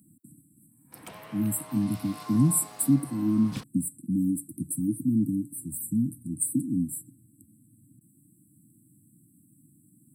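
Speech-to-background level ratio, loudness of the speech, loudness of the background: 16.5 dB, −27.5 LKFS, −44.0 LKFS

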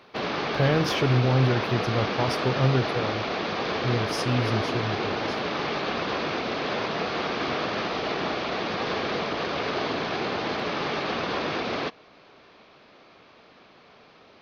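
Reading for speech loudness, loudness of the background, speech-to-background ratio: −26.5 LKFS, −28.0 LKFS, 1.5 dB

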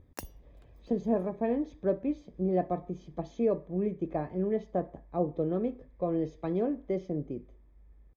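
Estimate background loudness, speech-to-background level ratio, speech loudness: −48.0 LKFS, 15.5 dB, −32.5 LKFS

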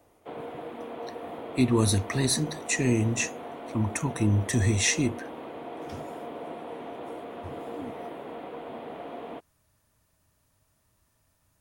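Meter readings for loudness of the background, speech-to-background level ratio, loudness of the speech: −39.5 LKFS, 13.5 dB, −26.0 LKFS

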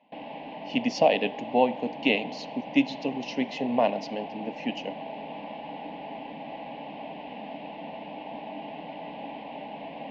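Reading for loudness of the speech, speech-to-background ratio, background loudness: −27.5 LKFS, 12.0 dB, −39.5 LKFS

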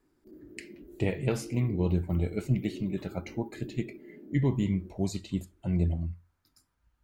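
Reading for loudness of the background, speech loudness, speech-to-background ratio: −47.0 LKFS, −31.5 LKFS, 15.5 dB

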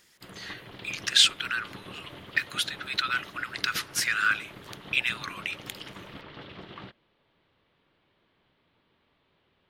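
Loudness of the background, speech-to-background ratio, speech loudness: −45.0 LKFS, 18.0 dB, −27.0 LKFS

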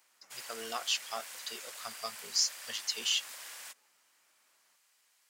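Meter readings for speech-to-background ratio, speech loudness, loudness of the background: 10.5 dB, −34.0 LKFS, −44.5 LKFS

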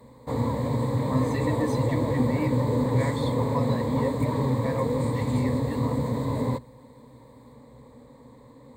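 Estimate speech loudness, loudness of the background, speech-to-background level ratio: −31.5 LKFS, −27.0 LKFS, −4.5 dB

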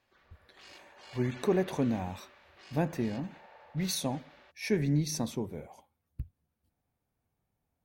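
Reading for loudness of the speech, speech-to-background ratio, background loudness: −33.0 LKFS, 19.5 dB, −52.5 LKFS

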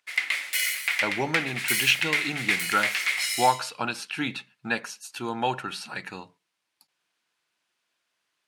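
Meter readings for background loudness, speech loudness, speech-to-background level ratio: −26.0 LKFS, −28.5 LKFS, −2.5 dB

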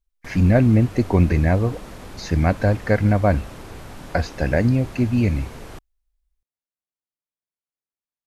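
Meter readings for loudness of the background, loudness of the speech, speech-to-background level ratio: −39.5 LKFS, −20.0 LKFS, 19.5 dB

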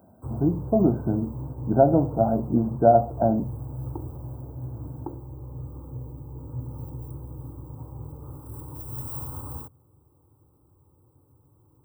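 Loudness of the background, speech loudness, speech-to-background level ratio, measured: −36.5 LKFS, −22.5 LKFS, 14.0 dB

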